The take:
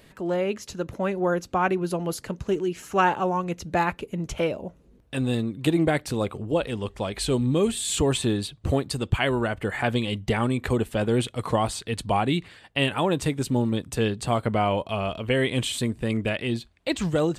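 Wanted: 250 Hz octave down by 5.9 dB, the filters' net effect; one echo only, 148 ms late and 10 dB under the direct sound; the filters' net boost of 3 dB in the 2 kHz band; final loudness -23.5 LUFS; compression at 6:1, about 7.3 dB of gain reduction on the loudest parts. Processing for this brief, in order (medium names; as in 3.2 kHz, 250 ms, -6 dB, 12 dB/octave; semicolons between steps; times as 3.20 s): peaking EQ 250 Hz -8.5 dB; peaking EQ 2 kHz +4 dB; compression 6:1, threshold -25 dBFS; delay 148 ms -10 dB; trim +7 dB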